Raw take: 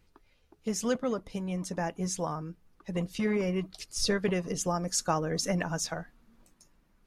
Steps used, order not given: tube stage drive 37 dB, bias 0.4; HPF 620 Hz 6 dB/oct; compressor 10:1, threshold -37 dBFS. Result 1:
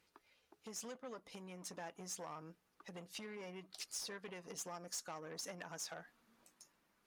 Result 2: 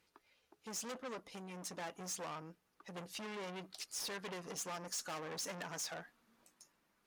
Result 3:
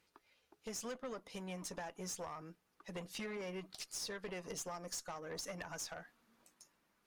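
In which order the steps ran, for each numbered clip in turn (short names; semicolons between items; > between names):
compressor > tube stage > HPF; tube stage > HPF > compressor; HPF > compressor > tube stage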